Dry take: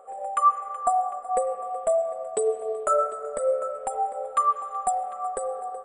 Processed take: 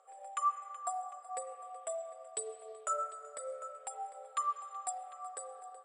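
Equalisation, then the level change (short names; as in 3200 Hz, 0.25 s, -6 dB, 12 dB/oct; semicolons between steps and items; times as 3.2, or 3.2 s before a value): band-pass 6000 Hz, Q 1.3; air absorption 61 m; +5.0 dB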